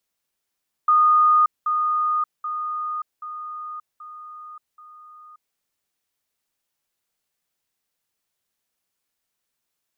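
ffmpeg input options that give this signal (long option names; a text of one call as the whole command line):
ffmpeg -f lavfi -i "aevalsrc='pow(10,(-12.5-6*floor(t/0.78))/20)*sin(2*PI*1230*t)*clip(min(mod(t,0.78),0.58-mod(t,0.78))/0.005,0,1)':duration=4.68:sample_rate=44100" out.wav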